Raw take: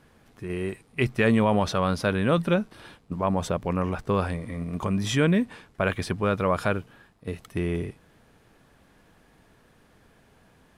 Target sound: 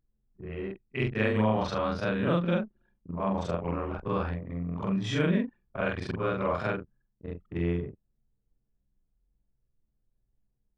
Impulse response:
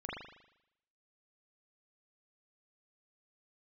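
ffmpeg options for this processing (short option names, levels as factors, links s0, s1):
-af "afftfilt=real='re':imag='-im':win_size=4096:overlap=0.75,anlmdn=0.631,lowpass=4700"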